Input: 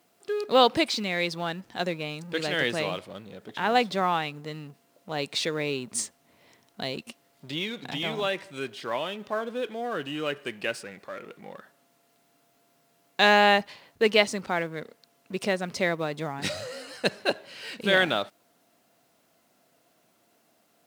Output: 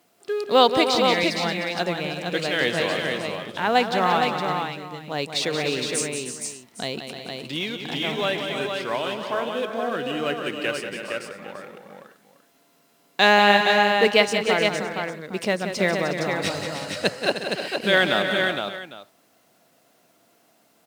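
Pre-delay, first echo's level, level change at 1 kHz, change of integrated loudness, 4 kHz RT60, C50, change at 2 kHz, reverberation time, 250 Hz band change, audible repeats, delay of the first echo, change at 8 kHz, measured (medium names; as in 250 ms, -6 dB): no reverb, -8.5 dB, +5.0 dB, +4.5 dB, no reverb, no reverb, +5.0 dB, no reverb, +5.0 dB, 6, 180 ms, +5.0 dB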